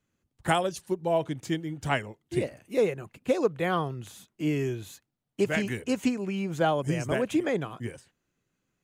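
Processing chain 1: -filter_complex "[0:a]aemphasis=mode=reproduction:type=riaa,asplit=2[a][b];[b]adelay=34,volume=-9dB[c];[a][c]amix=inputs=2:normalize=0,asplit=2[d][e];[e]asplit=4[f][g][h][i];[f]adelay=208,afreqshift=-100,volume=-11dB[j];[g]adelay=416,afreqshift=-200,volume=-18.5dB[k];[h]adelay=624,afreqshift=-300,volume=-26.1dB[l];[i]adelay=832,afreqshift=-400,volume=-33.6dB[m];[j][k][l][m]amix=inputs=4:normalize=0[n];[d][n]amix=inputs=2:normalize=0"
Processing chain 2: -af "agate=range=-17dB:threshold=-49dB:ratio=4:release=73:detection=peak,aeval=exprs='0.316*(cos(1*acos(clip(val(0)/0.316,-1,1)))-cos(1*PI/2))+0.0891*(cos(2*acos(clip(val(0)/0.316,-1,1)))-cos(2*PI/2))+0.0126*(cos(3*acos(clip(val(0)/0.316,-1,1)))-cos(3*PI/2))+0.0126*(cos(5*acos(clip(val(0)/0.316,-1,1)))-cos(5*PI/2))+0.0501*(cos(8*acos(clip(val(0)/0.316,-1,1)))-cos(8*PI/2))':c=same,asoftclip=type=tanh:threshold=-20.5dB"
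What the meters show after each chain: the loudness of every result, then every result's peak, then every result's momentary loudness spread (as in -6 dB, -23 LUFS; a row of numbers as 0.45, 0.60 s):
-23.5, -31.5 LUFS; -7.0, -20.5 dBFS; 8, 11 LU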